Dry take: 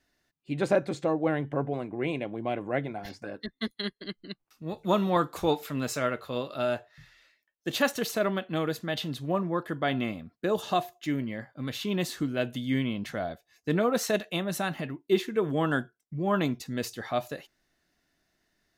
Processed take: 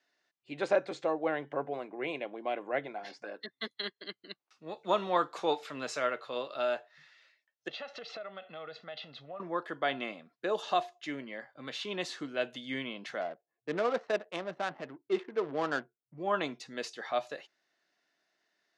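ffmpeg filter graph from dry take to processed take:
-filter_complex "[0:a]asettb=1/sr,asplit=3[a][b][c];[a]atrim=end=7.684[d];[b]atrim=start=7.68:end=9.4,asetpts=PTS-STARTPTS,afade=t=in:d=0.004:c=qsin,afade=t=out:st=1.716:d=0.004:c=qsin,lowpass=f=4.5k:w=0.5412,lowpass=f=4.5k:w=1.3066,aecho=1:1:1.5:0.63,atrim=end_sample=75852,acompressor=threshold=-36dB:ratio=8:attack=3.2:release=140:knee=1:detection=peak[e];[c]atrim=start=9.396[f];[d][e]acrossfade=d=0.004:c1=hsin:c2=qsin[g];[g][f]acrossfade=d=0.004:c1=qsin:c2=hsin,asettb=1/sr,asplit=3[h][i][j];[h]atrim=end=13.214[k];[i]atrim=start=13.21:end=16.18,asetpts=PTS-STARTPTS,afade=t=in:d=0.004:c=qsin,afade=t=out:st=2.966:d=0.004:c=qsin,highshelf=f=3.2k:g=-7.5,adynamicsmooth=sensitivity=5.5:basefreq=530[l];[j]atrim=start=16.176[m];[k][l]acrossfade=d=0.004:c1=hsin:c2=qsin[n];[n][m]acrossfade=d=0.004:c1=qsin:c2=hsin,afftfilt=real='re*between(b*sr/4096,120,12000)':imag='im*between(b*sr/4096,120,12000)':win_size=4096:overlap=0.75,acrossover=split=370 6900:gain=0.141 1 0.0708[o][p][q];[o][p][q]amix=inputs=3:normalize=0,volume=-1.5dB"

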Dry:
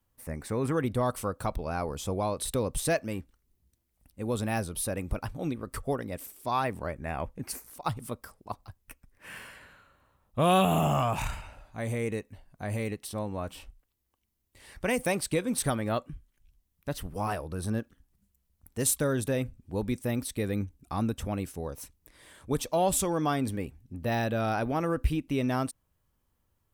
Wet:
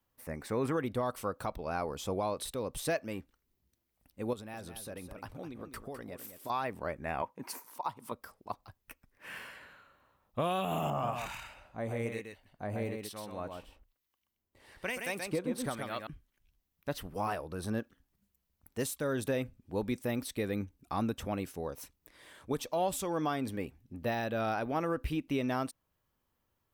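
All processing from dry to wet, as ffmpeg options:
-filter_complex "[0:a]asettb=1/sr,asplit=3[a][b][c];[a]atrim=end=4.334[d];[b]atrim=start=4.33:end=6.5,asetpts=PTS-STARTPTS,afade=t=in:d=0.004:c=qsin,afade=t=out:st=2.166:d=0.004:c=qsin,acompressor=threshold=-36dB:ratio=12:attack=3.2:release=140:knee=1:detection=peak,aecho=1:1:207:0.316,atrim=end_sample=95697[e];[c]atrim=start=6.496[f];[d][e]acrossfade=d=0.004:c1=hsin:c2=qsin[g];[g][f]acrossfade=d=0.004:c1=qsin:c2=hsin,asettb=1/sr,asplit=3[h][i][j];[h]atrim=end=7.224[k];[i]atrim=start=7.22:end=8.12,asetpts=PTS-STARTPTS,afade=t=in:d=0.004:c=qsin,afade=t=out:st=0.896:d=0.004:c=qsin,highpass=170,equalizer=f=960:w=4.6:g=14.5[l];[j]atrim=start=8.116[m];[k][l]acrossfade=d=0.004:c1=hsin:c2=qsin[n];[n][m]acrossfade=d=0.004:c1=qsin:c2=hsin,asettb=1/sr,asplit=3[o][p][q];[o]atrim=end=10.904[r];[p]atrim=start=10.9:end=16.07,asetpts=PTS-STARTPTS,afade=t=in:d=0.004:c=qsin,afade=t=out:st=5.166:d=0.004:c=qsin,acrossover=split=1300[s][t];[s]aeval=exprs='val(0)*(1-0.7/2+0.7/2*cos(2*PI*1.1*n/s))':c=same[u];[t]aeval=exprs='val(0)*(1-0.7/2-0.7/2*cos(2*PI*1.1*n/s))':c=same[v];[u][v]amix=inputs=2:normalize=0,aecho=1:1:128:0.562,atrim=end_sample=227997[w];[q]atrim=start=16.066[x];[r][w]acrossfade=d=0.004:c1=hsin:c2=qsin[y];[y][x]acrossfade=d=0.004:c1=qsin:c2=hsin,lowshelf=f=150:g=-10.5,alimiter=limit=-22.5dB:level=0:latency=1:release=347,equalizer=f=9.1k:t=o:w=1:g=-6.5"

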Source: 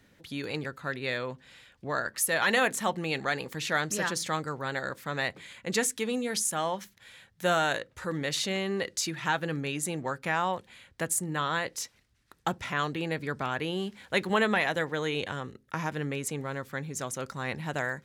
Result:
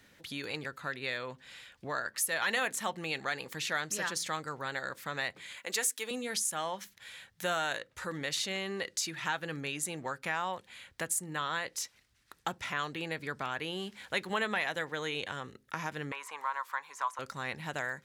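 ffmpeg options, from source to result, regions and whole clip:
-filter_complex "[0:a]asettb=1/sr,asplit=3[a][b][c];[a]atrim=end=5.574[d];[b]atrim=start=5.57:end=6.11,asetpts=PTS-STARTPTS,afade=t=in:d=0.004:c=qsin,afade=t=out:st=0.536:d=0.004:c=qsin,highpass=380,highshelf=f=11k:g=11[e];[c]atrim=start=6.106[f];[d][e]acrossfade=d=0.004:c1=hsin:c2=qsin[g];[g][f]acrossfade=d=0.004:c1=qsin:c2=hsin,asettb=1/sr,asplit=3[h][i][j];[h]atrim=end=16.124[k];[i]atrim=start=16.12:end=17.19,asetpts=PTS-STARTPTS,afade=t=in:d=0.004:c=qsin,afade=t=out:st=1.066:d=0.004:c=qsin,acrossover=split=2500[l][m];[m]acompressor=threshold=-49dB:ratio=4:attack=1:release=60[n];[l][n]amix=inputs=2:normalize=0,highpass=f=1k:t=q:w=12[o];[j]atrim=start=17.186[p];[k][o]acrossfade=d=0.004:c1=hsin:c2=qsin[q];[q][p]acrossfade=d=0.004:c1=qsin:c2=hsin,tiltshelf=f=660:g=-4,acompressor=threshold=-42dB:ratio=1.5"

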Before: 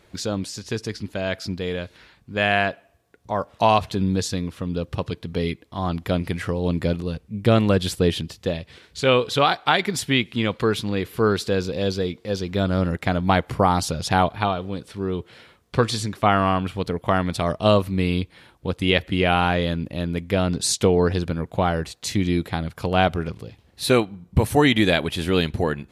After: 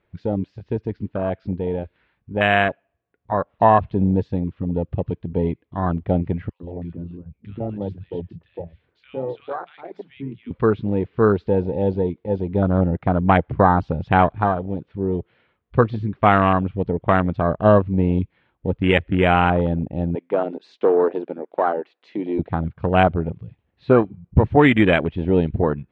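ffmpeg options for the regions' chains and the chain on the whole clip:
-filter_complex "[0:a]asettb=1/sr,asplit=3[a][b][c];[a]atrim=end=6.494[d];[b]atrim=start=6.49:end=10.51,asetpts=PTS-STARTPTS,afade=t=in:d=0.004:c=qsin,afade=t=out:st=4.016:d=0.004:c=qsin,flanger=delay=2.2:depth=4.7:regen=-70:speed=1.1:shape=sinusoidal,acompressor=threshold=-36dB:ratio=1.5:attack=3.2:release=140:knee=1:detection=peak,acrossover=split=160|1500[e][f][g];[f]adelay=110[h];[e]adelay=140[i];[i][h][g]amix=inputs=3:normalize=0,atrim=end_sample=177282[j];[c]atrim=start=10.506[k];[d][j]acrossfade=d=0.004:c1=hsin:c2=qsin[l];[l][k]acrossfade=d=0.004:c1=qsin:c2=hsin,asettb=1/sr,asplit=3[m][n][o];[m]atrim=end=20.154[p];[n]atrim=start=20.15:end=22.39,asetpts=PTS-STARTPTS,afade=t=in:d=0.004:c=qsin,afade=t=out:st=2.236:d=0.004:c=qsin,highpass=f=300:w=0.5412,highpass=f=300:w=1.3066,volume=13dB,asoftclip=hard,volume=-13dB[q];[o]atrim=start=22.386[r];[p][q]acrossfade=d=0.004:c1=hsin:c2=qsin[s];[s][r]acrossfade=d=0.004:c1=qsin:c2=hsin,lowpass=f=2.9k:w=0.5412,lowpass=f=2.9k:w=1.3066,afwtdn=0.0631,volume=3.5dB"

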